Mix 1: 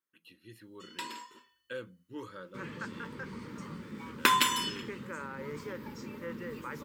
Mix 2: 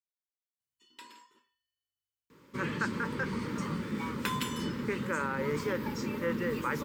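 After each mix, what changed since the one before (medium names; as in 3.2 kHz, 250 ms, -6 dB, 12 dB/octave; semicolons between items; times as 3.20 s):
speech: muted; first sound -10.5 dB; second sound +8.5 dB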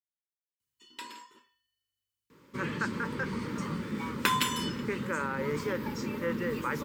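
first sound +7.5 dB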